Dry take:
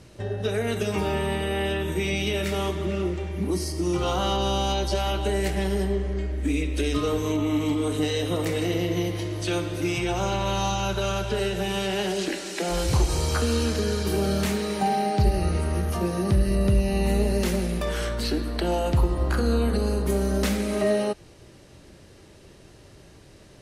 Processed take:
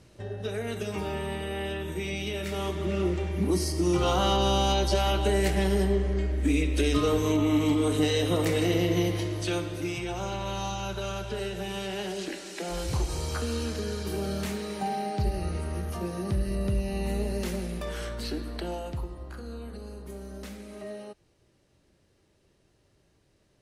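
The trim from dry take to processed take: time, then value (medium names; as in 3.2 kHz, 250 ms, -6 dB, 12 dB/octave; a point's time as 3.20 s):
2.42 s -6.5 dB
3.12 s +0.5 dB
9.12 s +0.5 dB
10.02 s -7 dB
18.54 s -7 dB
19.26 s -17 dB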